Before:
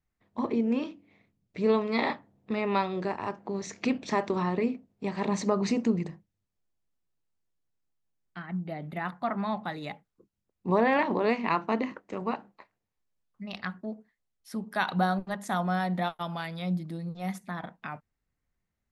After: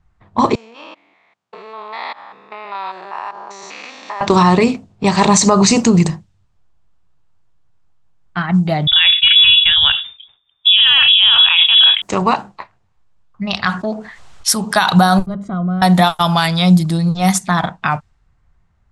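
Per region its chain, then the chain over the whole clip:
0:00.55–0:04.21: spectrum averaged block by block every 200 ms + downward compressor, threshold −39 dBFS + high-pass filter 780 Hz
0:08.87–0:12.02: dynamic equaliser 170 Hz, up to +5 dB, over −42 dBFS, Q 0.94 + voice inversion scrambler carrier 3,600 Hz + level that may fall only so fast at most 130 dB per second
0:13.66–0:14.74: low-shelf EQ 270 Hz −10 dB + envelope flattener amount 50%
0:15.26–0:15.82: moving average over 50 samples + downward compressor 2 to 1, threshold −40 dBFS
whole clip: octave-band graphic EQ 250/500/2,000/8,000 Hz −11/−9/−8/+10 dB; low-pass that shuts in the quiet parts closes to 1,800 Hz, open at −33.5 dBFS; boost into a limiter +27.5 dB; level −1 dB

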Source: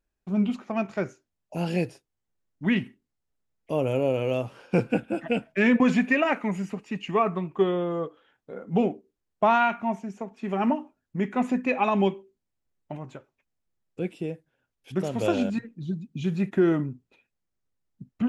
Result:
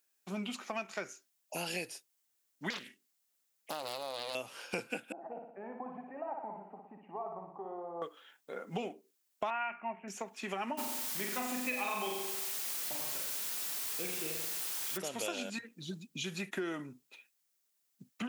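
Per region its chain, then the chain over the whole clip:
0:02.70–0:04.35: dynamic equaliser 5,500 Hz, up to +7 dB, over −51 dBFS, Q 0.78 + downward compressor 3 to 1, threshold −31 dBFS + highs frequency-modulated by the lows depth 0.86 ms
0:05.12–0:08.02: downward compressor 2.5 to 1, threshold −30 dBFS + transistor ladder low-pass 870 Hz, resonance 75% + flutter between parallel walls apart 10.1 metres, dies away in 0.72 s
0:09.50–0:10.08: Chebyshev low-pass filter 2,800 Hz, order 6 + mains-hum notches 60/120/180/240/300/360/420 Hz
0:10.77–0:14.96: flutter between parallel walls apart 7.5 metres, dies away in 0.86 s + background noise pink −41 dBFS
whole clip: high-pass filter 150 Hz; spectral tilt +4.5 dB per octave; downward compressor 4 to 1, threshold −37 dBFS; level +1 dB

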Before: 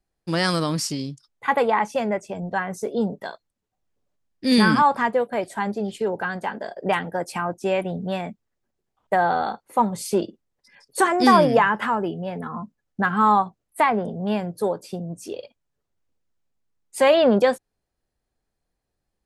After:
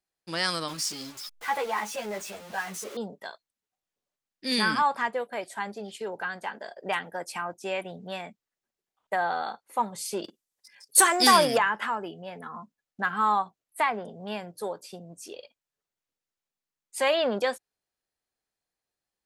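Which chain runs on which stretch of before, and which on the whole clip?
0:00.68–0:02.97: converter with a step at zero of −28.5 dBFS + string-ensemble chorus
0:10.24–0:11.58: parametric band 11,000 Hz +13.5 dB 1.9 octaves + leveller curve on the samples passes 1
whole clip: low-pass filter 3,900 Hz 6 dB per octave; spectral tilt +3.5 dB per octave; level −6 dB

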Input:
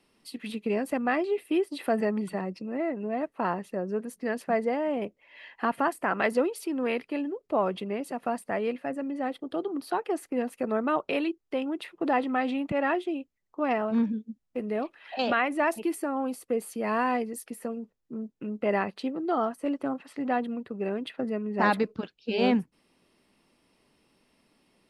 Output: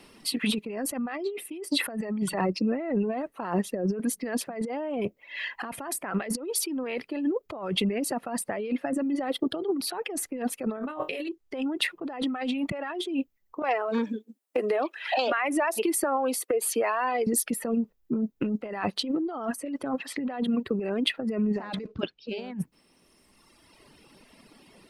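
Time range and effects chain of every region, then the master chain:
0:10.75–0:11.29: high-shelf EQ 6,100 Hz +9.5 dB + flutter between parallel walls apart 3.9 metres, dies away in 0.22 s
0:13.62–0:17.27: high-pass filter 330 Hz 24 dB per octave + downward compressor 16 to 1, threshold −35 dBFS
0:21.54–0:22.35: floating-point word with a short mantissa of 4 bits + high-frequency loss of the air 120 metres
whole clip: reverb reduction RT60 1.5 s; compressor whose output falls as the input rises −38 dBFS, ratio −1; level +8.5 dB

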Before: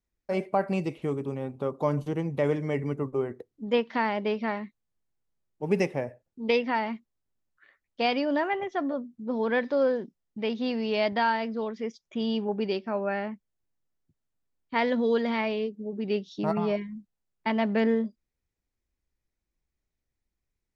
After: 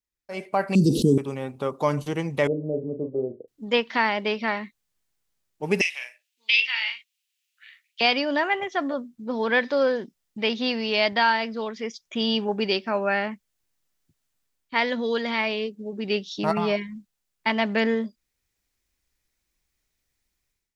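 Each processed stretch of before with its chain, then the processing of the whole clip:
0:00.75–0:01.18: elliptic band-stop filter 440–4,300 Hz + parametric band 210 Hz +14.5 dB 0.83 octaves + envelope flattener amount 70%
0:02.47–0:03.48: elliptic low-pass filter 600 Hz, stop band 70 dB + low-shelf EQ 130 Hz −10.5 dB + double-tracking delay 39 ms −7.5 dB
0:05.81–0:08.01: downward compressor, threshold −24 dBFS + high-pass with resonance 2,700 Hz, resonance Q 2.9 + double-tracking delay 41 ms −4.5 dB
whole clip: tilt shelving filter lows −6 dB, about 1,200 Hz; automatic gain control gain up to 14.5 dB; level −6 dB

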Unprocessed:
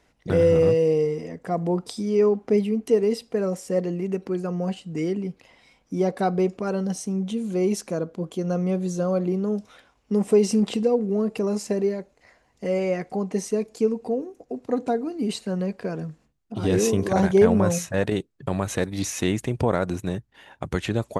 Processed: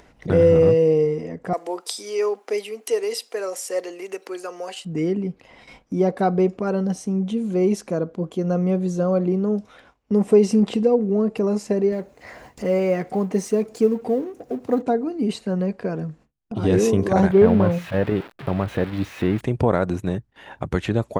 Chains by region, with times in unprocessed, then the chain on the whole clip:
0:01.53–0:04.85: high-pass filter 330 Hz 24 dB per octave + spectral tilt +4.5 dB per octave
0:11.92–0:14.82: mu-law and A-law mismatch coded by mu + high-pass filter 63 Hz + high-shelf EQ 10,000 Hz +6.5 dB
0:17.31–0:19.41: spike at every zero crossing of −12.5 dBFS + high-frequency loss of the air 460 metres
whole clip: noise gate with hold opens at −45 dBFS; high-shelf EQ 3,100 Hz −8.5 dB; upward compression, threshold −33 dBFS; level +3.5 dB

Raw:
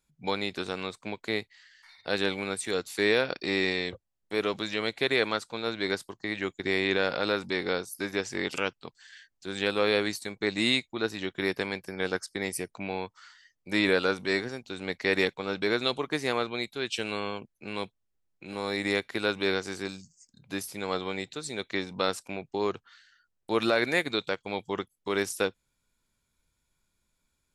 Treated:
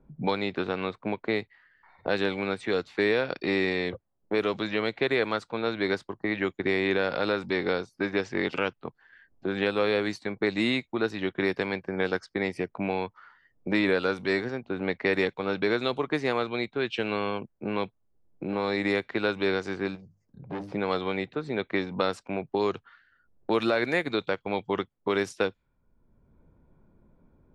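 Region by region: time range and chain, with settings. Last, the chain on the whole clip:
0:19.95–0:20.72: parametric band 250 Hz −11.5 dB 0.66 octaves + mains-hum notches 50/100/150/200/250/300 Hz + saturating transformer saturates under 3,500 Hz
whole clip: low-pass that shuts in the quiet parts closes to 580 Hz, open at −23.5 dBFS; low-pass filter 2,300 Hz 6 dB per octave; multiband upward and downward compressor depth 70%; level +2.5 dB

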